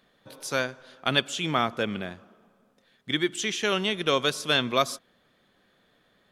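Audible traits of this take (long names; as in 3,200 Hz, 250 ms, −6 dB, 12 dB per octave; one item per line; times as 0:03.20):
background noise floor −66 dBFS
spectral slope −3.0 dB per octave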